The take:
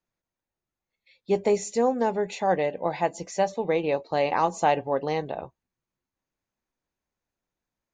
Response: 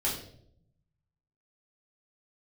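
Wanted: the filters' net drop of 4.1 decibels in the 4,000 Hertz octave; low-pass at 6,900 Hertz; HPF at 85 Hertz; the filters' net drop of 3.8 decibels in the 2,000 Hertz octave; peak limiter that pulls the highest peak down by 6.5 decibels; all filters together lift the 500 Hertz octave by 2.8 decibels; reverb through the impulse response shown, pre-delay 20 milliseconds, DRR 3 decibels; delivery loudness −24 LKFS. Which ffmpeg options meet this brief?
-filter_complex "[0:a]highpass=85,lowpass=6900,equalizer=frequency=500:width_type=o:gain=3.5,equalizer=frequency=2000:width_type=o:gain=-4,equalizer=frequency=4000:width_type=o:gain=-3.5,alimiter=limit=-15.5dB:level=0:latency=1,asplit=2[link_01][link_02];[1:a]atrim=start_sample=2205,adelay=20[link_03];[link_02][link_03]afir=irnorm=-1:irlink=0,volume=-10dB[link_04];[link_01][link_04]amix=inputs=2:normalize=0,volume=1dB"

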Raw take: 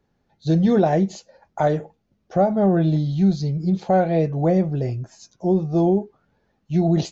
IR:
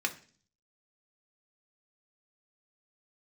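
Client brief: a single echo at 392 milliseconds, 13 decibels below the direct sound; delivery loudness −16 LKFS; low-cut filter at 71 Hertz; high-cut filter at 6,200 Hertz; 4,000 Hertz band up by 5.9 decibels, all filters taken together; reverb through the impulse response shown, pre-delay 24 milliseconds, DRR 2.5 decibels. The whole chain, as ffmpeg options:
-filter_complex "[0:a]highpass=71,lowpass=6200,equalizer=frequency=4000:width_type=o:gain=7.5,aecho=1:1:392:0.224,asplit=2[link_01][link_02];[1:a]atrim=start_sample=2205,adelay=24[link_03];[link_02][link_03]afir=irnorm=-1:irlink=0,volume=-8.5dB[link_04];[link_01][link_04]amix=inputs=2:normalize=0,volume=4dB"

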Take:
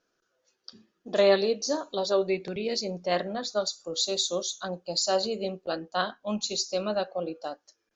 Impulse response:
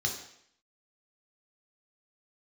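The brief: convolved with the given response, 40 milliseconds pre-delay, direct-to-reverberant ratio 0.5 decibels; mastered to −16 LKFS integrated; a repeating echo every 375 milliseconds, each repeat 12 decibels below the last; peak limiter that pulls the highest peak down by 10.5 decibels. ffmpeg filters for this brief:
-filter_complex "[0:a]alimiter=limit=-20.5dB:level=0:latency=1,aecho=1:1:375|750|1125:0.251|0.0628|0.0157,asplit=2[link_01][link_02];[1:a]atrim=start_sample=2205,adelay=40[link_03];[link_02][link_03]afir=irnorm=-1:irlink=0,volume=-6dB[link_04];[link_01][link_04]amix=inputs=2:normalize=0,volume=11.5dB"

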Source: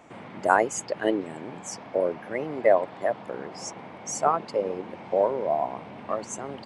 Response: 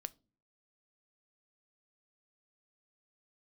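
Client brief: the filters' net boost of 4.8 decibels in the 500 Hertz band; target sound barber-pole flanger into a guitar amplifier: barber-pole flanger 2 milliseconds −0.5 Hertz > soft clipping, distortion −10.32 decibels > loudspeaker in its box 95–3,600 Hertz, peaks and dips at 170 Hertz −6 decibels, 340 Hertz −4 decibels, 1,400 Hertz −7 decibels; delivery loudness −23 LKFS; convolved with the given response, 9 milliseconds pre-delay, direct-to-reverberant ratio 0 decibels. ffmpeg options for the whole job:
-filter_complex "[0:a]equalizer=frequency=500:width_type=o:gain=6.5,asplit=2[link_01][link_02];[1:a]atrim=start_sample=2205,adelay=9[link_03];[link_02][link_03]afir=irnorm=-1:irlink=0,volume=3.5dB[link_04];[link_01][link_04]amix=inputs=2:normalize=0,asplit=2[link_05][link_06];[link_06]adelay=2,afreqshift=-0.5[link_07];[link_05][link_07]amix=inputs=2:normalize=1,asoftclip=threshold=-14.5dB,highpass=95,equalizer=frequency=170:width_type=q:width=4:gain=-6,equalizer=frequency=340:width_type=q:width=4:gain=-4,equalizer=frequency=1400:width_type=q:width=4:gain=-7,lowpass=frequency=3600:width=0.5412,lowpass=frequency=3600:width=1.3066,volume=3dB"

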